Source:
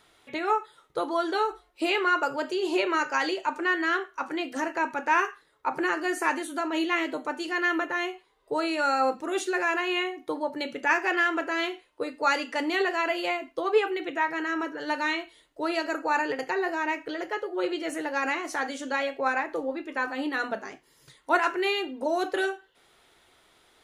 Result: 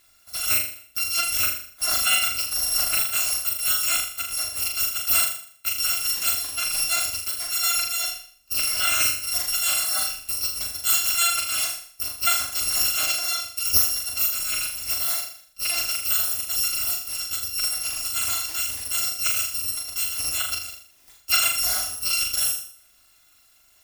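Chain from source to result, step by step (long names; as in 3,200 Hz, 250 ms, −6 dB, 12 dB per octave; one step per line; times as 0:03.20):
samples in bit-reversed order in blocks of 256 samples
flutter between parallel walls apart 6.9 metres, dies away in 0.53 s
level +1.5 dB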